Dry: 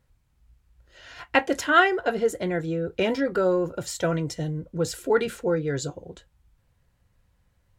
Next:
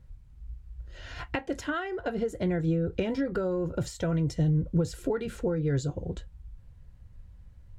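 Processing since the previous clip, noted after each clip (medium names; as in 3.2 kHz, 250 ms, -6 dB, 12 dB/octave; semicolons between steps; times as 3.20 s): treble shelf 3.8 kHz +12 dB; compression 16:1, threshold -29 dBFS, peak gain reduction 19 dB; RIAA curve playback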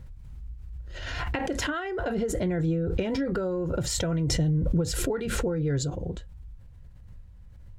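swell ahead of each attack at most 26 dB/s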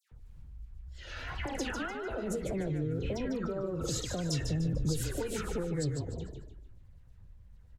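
phase dispersion lows, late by 118 ms, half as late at 1.9 kHz; wow and flutter 130 cents; frequency-shifting echo 149 ms, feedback 36%, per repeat -31 Hz, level -6.5 dB; trim -7.5 dB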